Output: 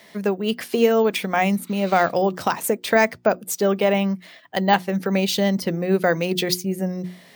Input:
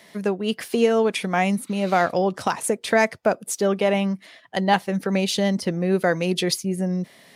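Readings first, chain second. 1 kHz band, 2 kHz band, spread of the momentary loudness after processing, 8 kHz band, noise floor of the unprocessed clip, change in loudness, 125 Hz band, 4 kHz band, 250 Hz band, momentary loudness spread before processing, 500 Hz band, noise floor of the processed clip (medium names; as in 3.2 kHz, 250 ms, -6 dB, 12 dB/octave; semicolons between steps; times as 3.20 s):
+1.5 dB, +1.5 dB, 7 LU, -0.5 dB, -52 dBFS, +1.5 dB, +0.5 dB, +1.0 dB, +1.0 dB, 6 LU, +1.5 dB, -49 dBFS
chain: hum notches 60/120/180/240/300/360 Hz; careless resampling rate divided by 2×, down filtered, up hold; trim +1.5 dB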